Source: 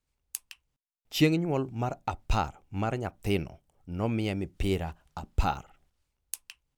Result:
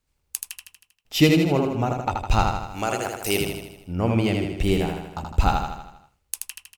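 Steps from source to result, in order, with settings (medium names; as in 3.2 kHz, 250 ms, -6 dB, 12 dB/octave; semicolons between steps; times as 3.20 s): 2.60–3.41 s: tone controls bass -13 dB, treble +14 dB; on a send: feedback delay 79 ms, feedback 55%, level -4 dB; on the sum: trim +6 dB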